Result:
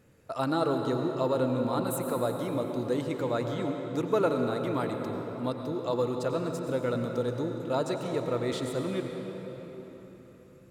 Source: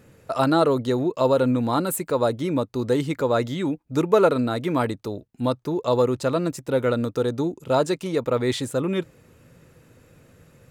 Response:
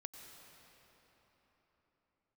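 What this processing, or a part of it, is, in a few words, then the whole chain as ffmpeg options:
cathedral: -filter_complex "[1:a]atrim=start_sample=2205[s0];[0:a][s0]afir=irnorm=-1:irlink=0,volume=0.708"

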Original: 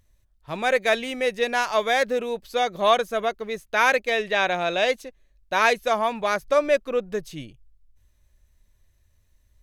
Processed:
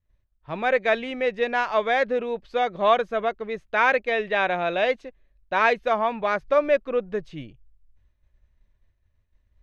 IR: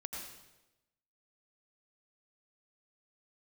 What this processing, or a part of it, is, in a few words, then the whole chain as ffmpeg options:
hearing-loss simulation: -af "lowpass=2700,agate=range=0.0224:threshold=0.00158:ratio=3:detection=peak"

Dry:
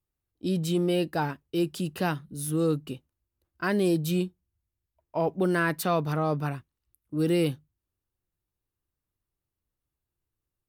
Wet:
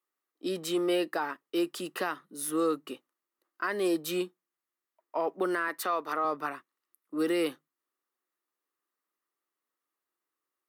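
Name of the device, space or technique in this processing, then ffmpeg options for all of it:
laptop speaker: -filter_complex "[0:a]highpass=f=290:w=0.5412,highpass=f=290:w=1.3066,equalizer=f=1200:t=o:w=0.5:g=10.5,equalizer=f=1900:t=o:w=0.25:g=8,alimiter=limit=0.106:level=0:latency=1:release=250,asettb=1/sr,asplit=3[s0][s1][s2];[s0]atrim=end=5.684[s3];[s1]atrim=start=5.68:end=6.25,asetpts=PTS-STARTPTS,afade=t=in:d=0.004:c=qsin,afade=t=out:st=0.566:d=0.004:c=qsin,highpass=220[s4];[s2]atrim=start=6.246[s5];[s3][s4]acrossfade=d=0.004:c1=hsin:c2=qsin[s6];[s6][s5]acrossfade=d=0.004:c1=qsin:c2=hsin"

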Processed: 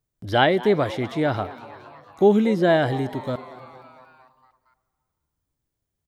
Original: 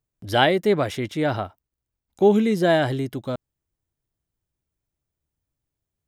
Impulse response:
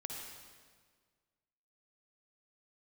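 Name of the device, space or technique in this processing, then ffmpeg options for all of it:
compressed reverb return: -filter_complex "[0:a]acrossover=split=4500[s0][s1];[s1]acompressor=threshold=0.00282:ratio=4:attack=1:release=60[s2];[s0][s2]amix=inputs=2:normalize=0,asplit=2[s3][s4];[1:a]atrim=start_sample=2205[s5];[s4][s5]afir=irnorm=-1:irlink=0,acompressor=threshold=0.0158:ratio=6,volume=0.447[s6];[s3][s6]amix=inputs=2:normalize=0,equalizer=f=2600:t=o:w=0.33:g=-3.5,asplit=7[s7][s8][s9][s10][s11][s12][s13];[s8]adelay=230,afreqshift=130,volume=0.126[s14];[s9]adelay=460,afreqshift=260,volume=0.0776[s15];[s10]adelay=690,afreqshift=390,volume=0.0484[s16];[s11]adelay=920,afreqshift=520,volume=0.0299[s17];[s12]adelay=1150,afreqshift=650,volume=0.0186[s18];[s13]adelay=1380,afreqshift=780,volume=0.0115[s19];[s7][s14][s15][s16][s17][s18][s19]amix=inputs=7:normalize=0"

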